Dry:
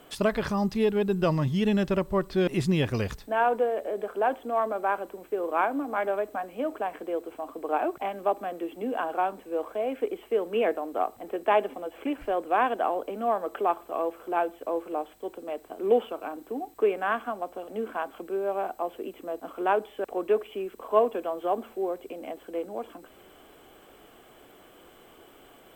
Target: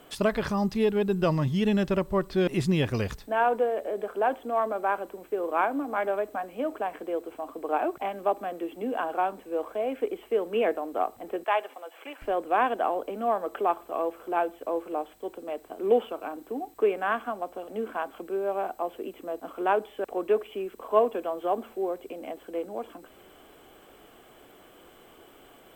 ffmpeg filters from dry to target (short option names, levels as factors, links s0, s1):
-filter_complex "[0:a]asettb=1/sr,asplit=3[s0][s1][s2];[s0]atrim=end=11.444[s3];[s1]atrim=start=11.44:end=12.22,asetpts=PTS-STARTPTS,afade=t=in:d=0.004:c=qsin,afade=t=out:st=0.776:d=0.004:c=qsin,highpass=760[s4];[s2]atrim=start=12.216[s5];[s3][s4]acrossfade=d=0.004:c1=hsin:c2=qsin[s6];[s6][s5]acrossfade=d=0.004:c1=qsin:c2=hsin"